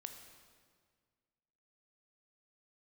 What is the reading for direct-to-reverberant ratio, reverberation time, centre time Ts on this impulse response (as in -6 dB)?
5.0 dB, 1.8 s, 33 ms